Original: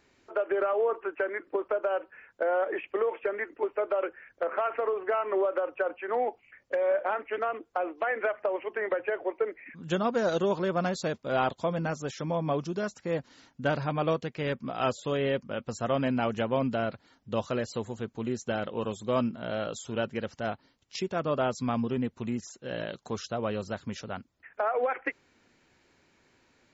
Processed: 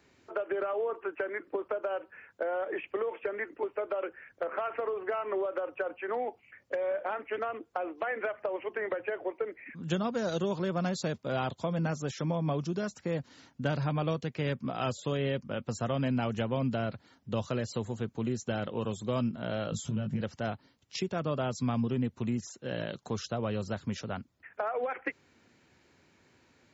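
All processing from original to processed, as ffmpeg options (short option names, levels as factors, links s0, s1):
-filter_complex "[0:a]asettb=1/sr,asplit=3[s0][s1][s2];[s0]atrim=end=19.714[s3];[s1]atrim=start=19.71:end=20.21,asetpts=PTS-STARTPTS,afade=t=in:d=0.004:c=qsin,afade=t=out:st=0.496:d=0.004:c=qsin,lowshelf=f=290:t=q:w=1.5:g=11.5,acompressor=threshold=0.0251:ratio=12:attack=3.2:release=140:knee=1:detection=peak,asplit=2[s4][s5];[s5]adelay=19,volume=0.562[s6];[s4][s6]amix=inputs=2:normalize=0,atrim=end_sample=22050[s7];[s2]atrim=start=20.206[s8];[s3][s7]acrossfade=d=0.004:c1=hsin:c2=qsin[s9];[s9][s8]acrossfade=d=0.004:c1=qsin:c2=hsin,highpass=85,lowshelf=f=150:g=8.5,acrossover=split=170|3000[s10][s11][s12];[s11]acompressor=threshold=0.0251:ratio=2.5[s13];[s10][s13][s12]amix=inputs=3:normalize=0"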